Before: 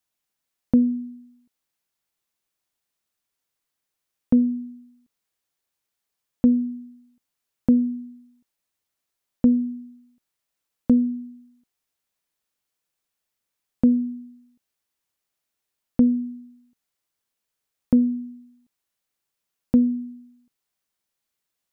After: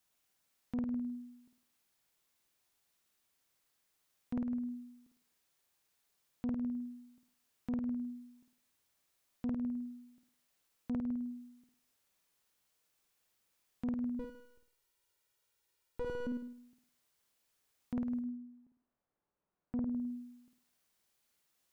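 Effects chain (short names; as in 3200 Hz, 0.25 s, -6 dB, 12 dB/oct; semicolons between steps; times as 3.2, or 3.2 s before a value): 14.19–16.27 minimum comb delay 2.1 ms; compressor 4:1, threshold -30 dBFS, peak gain reduction 14 dB; 18.19–19.86 LPF 1000 Hz -> 1000 Hz 12 dB/oct; flutter echo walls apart 8.9 m, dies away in 0.51 s; soft clip -21.5 dBFS, distortion -15 dB; limiter -33.5 dBFS, peak gain reduction 11.5 dB; gain +2.5 dB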